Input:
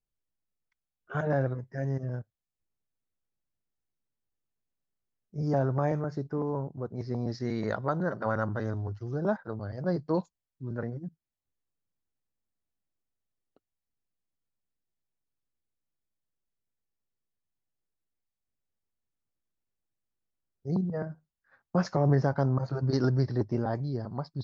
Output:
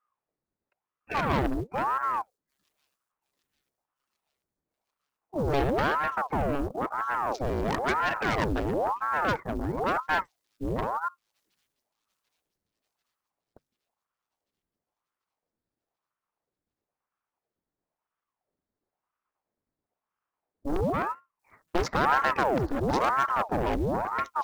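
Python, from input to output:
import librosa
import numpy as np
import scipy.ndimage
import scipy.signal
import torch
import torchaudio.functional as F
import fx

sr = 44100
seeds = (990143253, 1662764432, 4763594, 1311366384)

y = fx.wiener(x, sr, points=15)
y = 10.0 ** (-23.0 / 20.0) * np.tanh(y / 10.0 ** (-23.0 / 20.0))
y = fx.cheby_harmonics(y, sr, harmonics=(3, 5, 6, 7), levels_db=(-13, -9, -32, -22), full_scale_db=-23.0)
y = fx.quant_float(y, sr, bits=4)
y = fx.echo_wet_highpass(y, sr, ms=740, feedback_pct=66, hz=5400.0, wet_db=-22.5)
y = fx.ring_lfo(y, sr, carrier_hz=690.0, swing_pct=80, hz=0.99)
y = y * librosa.db_to_amplitude(8.0)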